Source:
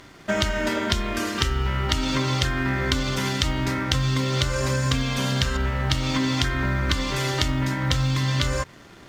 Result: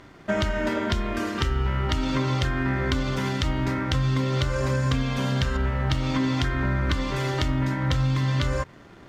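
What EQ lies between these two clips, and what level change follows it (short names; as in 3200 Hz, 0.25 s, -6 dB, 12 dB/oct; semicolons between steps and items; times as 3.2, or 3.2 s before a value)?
high shelf 2800 Hz -11 dB; 0.0 dB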